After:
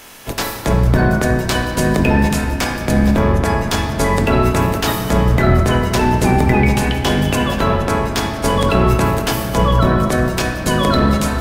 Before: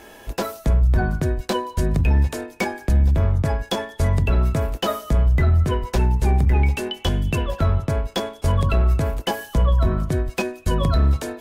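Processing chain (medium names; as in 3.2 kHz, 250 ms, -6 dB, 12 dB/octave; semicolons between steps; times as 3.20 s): spectral peaks clipped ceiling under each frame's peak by 19 dB; in parallel at -2 dB: peak limiter -15 dBFS, peak gain reduction 10 dB; on the sum: simulated room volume 220 m³, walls hard, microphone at 0.33 m; trim -1 dB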